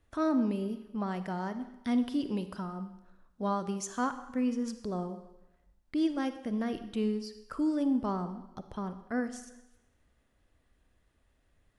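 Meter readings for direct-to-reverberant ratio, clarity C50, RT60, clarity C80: 10.0 dB, 11.0 dB, 0.95 s, 13.5 dB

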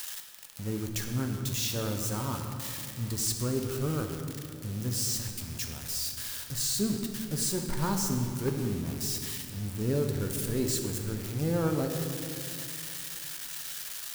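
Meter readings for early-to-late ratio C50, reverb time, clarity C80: 5.0 dB, 2.5 s, 6.0 dB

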